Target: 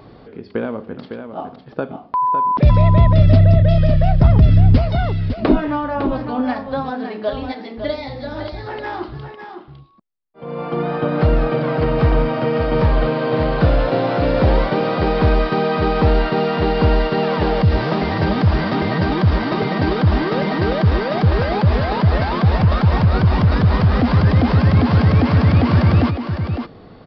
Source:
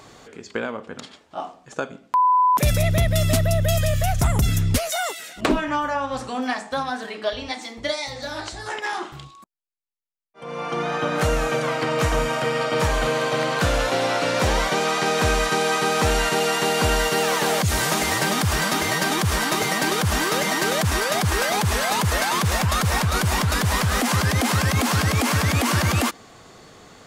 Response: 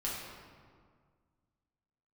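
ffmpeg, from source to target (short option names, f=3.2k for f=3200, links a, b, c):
-filter_complex "[0:a]tiltshelf=f=850:g=8,asplit=2[a][b];[b]aecho=0:1:556:0.398[c];[a][c]amix=inputs=2:normalize=0,aresample=11025,aresample=44100,volume=1dB"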